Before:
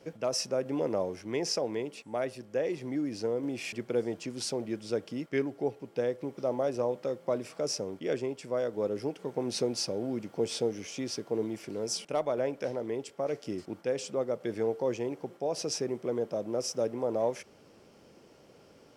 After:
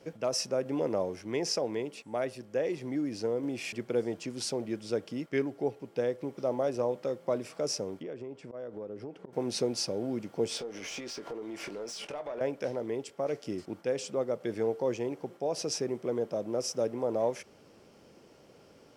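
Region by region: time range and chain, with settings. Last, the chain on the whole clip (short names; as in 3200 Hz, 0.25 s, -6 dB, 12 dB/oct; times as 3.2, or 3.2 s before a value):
8.02–9.33 LPF 1400 Hz 6 dB/oct + auto swell 0.137 s + compressor 5:1, threshold -37 dBFS
10.57–12.41 compressor 12:1, threshold -41 dBFS + overdrive pedal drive 19 dB, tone 3100 Hz, clips at -27 dBFS + doubler 21 ms -10.5 dB
whole clip: dry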